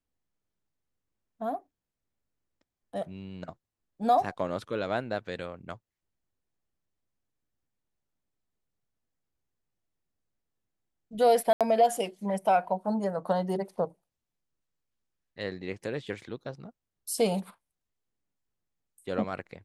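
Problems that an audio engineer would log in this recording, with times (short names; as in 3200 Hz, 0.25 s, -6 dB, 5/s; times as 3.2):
11.53–11.61 gap 77 ms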